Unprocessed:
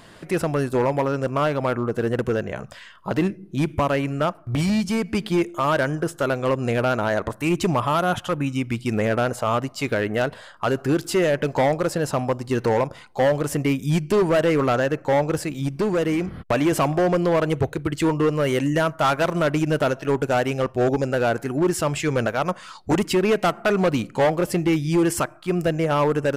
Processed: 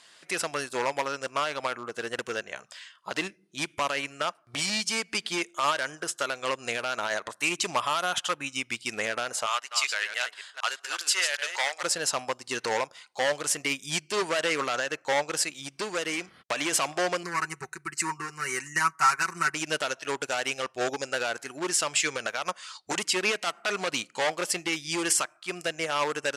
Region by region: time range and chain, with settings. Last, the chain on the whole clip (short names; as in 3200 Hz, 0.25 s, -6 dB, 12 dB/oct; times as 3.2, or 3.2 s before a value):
9.46–11.83 reverse delay 0.191 s, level -6.5 dB + HPF 1000 Hz
17.23–19.55 fixed phaser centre 1400 Hz, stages 4 + comb 5.3 ms, depth 72%
whole clip: weighting filter ITU-R 468; limiter -11.5 dBFS; upward expander 1.5:1, over -41 dBFS